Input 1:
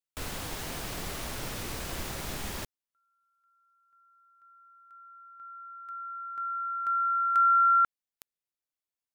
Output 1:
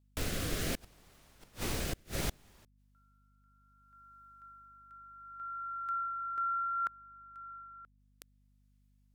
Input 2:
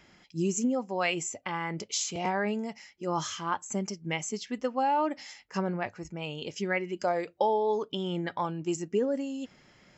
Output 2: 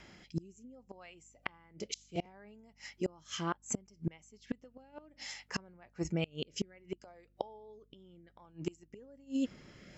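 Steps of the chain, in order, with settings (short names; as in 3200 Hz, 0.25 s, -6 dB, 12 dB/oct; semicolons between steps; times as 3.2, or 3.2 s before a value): rotary speaker horn 0.65 Hz; flipped gate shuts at -28 dBFS, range -31 dB; hum 50 Hz, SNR 28 dB; gain +6 dB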